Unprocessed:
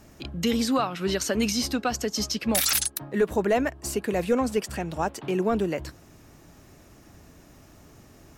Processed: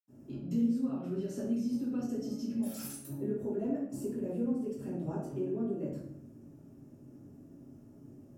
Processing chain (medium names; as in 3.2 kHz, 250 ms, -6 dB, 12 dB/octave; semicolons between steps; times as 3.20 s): ten-band graphic EQ 125 Hz +8 dB, 250 Hz +11 dB, 500 Hz +4 dB, 1 kHz -4 dB, 2 kHz -12 dB, 4 kHz -8 dB; compression 4:1, threshold -22 dBFS, peak gain reduction 11 dB; bass shelf 94 Hz -10.5 dB; flutter echo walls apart 8.6 m, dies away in 0.26 s; reverberation RT60 0.65 s, pre-delay 77 ms; trim +7.5 dB